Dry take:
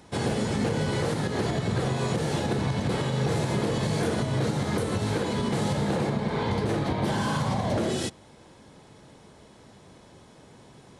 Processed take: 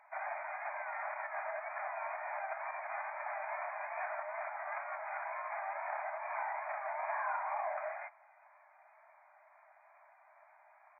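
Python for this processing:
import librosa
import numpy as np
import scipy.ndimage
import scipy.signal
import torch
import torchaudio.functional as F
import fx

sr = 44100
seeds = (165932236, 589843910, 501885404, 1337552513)

y = fx.wow_flutter(x, sr, seeds[0], rate_hz=2.1, depth_cents=130.0)
y = fx.brickwall_bandpass(y, sr, low_hz=590.0, high_hz=2500.0)
y = y * librosa.db_to_amplitude(-4.5)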